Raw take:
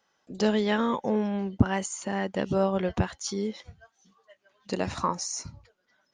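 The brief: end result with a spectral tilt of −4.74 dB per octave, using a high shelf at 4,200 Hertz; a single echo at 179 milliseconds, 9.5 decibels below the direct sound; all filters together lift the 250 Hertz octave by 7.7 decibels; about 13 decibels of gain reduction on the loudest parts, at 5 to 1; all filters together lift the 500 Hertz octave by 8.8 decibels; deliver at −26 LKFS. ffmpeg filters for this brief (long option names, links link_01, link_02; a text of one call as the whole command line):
ffmpeg -i in.wav -af "equalizer=frequency=250:width_type=o:gain=8,equalizer=frequency=500:width_type=o:gain=8.5,highshelf=frequency=4200:gain=4.5,acompressor=threshold=-25dB:ratio=5,aecho=1:1:179:0.335,volume=3.5dB" out.wav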